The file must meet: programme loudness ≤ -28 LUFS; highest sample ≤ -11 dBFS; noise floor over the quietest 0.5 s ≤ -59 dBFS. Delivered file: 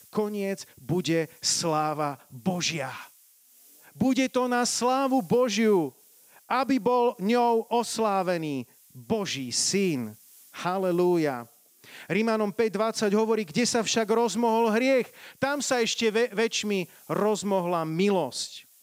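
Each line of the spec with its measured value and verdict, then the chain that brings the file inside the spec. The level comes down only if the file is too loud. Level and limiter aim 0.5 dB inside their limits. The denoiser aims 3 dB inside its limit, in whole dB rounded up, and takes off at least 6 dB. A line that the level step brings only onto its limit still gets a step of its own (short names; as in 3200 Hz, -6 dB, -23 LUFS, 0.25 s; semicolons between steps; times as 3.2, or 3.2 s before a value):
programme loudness -26.0 LUFS: fail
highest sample -12.5 dBFS: OK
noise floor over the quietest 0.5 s -58 dBFS: fail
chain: gain -2.5 dB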